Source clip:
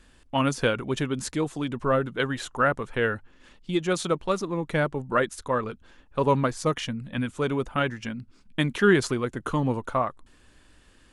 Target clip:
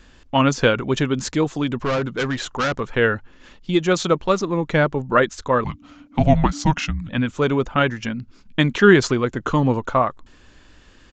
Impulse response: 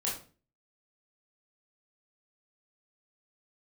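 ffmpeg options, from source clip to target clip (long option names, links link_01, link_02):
-filter_complex "[0:a]asettb=1/sr,asplit=3[link_01][link_02][link_03];[link_01]atrim=end=1.774[link_04];[link_02]atrim=start=1.77:end=2.8,asetpts=PTS-STARTPTS,afade=type=in:duration=0.004:curve=qsin,afade=type=out:start_time=1.026:duration=0.004:curve=qsin,volume=25.5dB,asoftclip=hard,volume=-25.5dB[link_05];[link_03]atrim=start=2.796[link_06];[link_04][link_05]acrossfade=duration=0.004:curve1=hsin:curve2=qsin[link_07];[link_07][link_06]acrossfade=duration=0.004:curve1=qsin:curve2=hsin,asettb=1/sr,asplit=3[link_08][link_09][link_10];[link_08]atrim=end=5.644[link_11];[link_09]atrim=start=5.64:end=7.09,asetpts=PTS-STARTPTS,afade=type=in:duration=0.004:curve=qsin,afade=type=out:start_time=1.446:duration=0.004:curve=qsin,afreqshift=-300[link_12];[link_10]atrim=start=7.086[link_13];[link_11][link_12]acrossfade=duration=0.004:curve1=hsin:curve2=qsin[link_14];[link_14][link_13]acrossfade=duration=0.004:curve1=qsin:curve2=hsin,aresample=16000,aresample=44100,volume=7dB"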